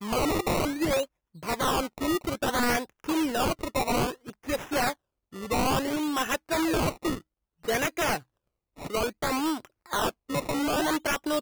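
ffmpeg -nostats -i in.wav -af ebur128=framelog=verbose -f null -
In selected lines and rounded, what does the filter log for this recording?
Integrated loudness:
  I:         -28.2 LUFS
  Threshold: -38.6 LUFS
Loudness range:
  LRA:         2.0 LU
  Threshold: -48.8 LUFS
  LRA low:   -30.0 LUFS
  LRA high:  -28.0 LUFS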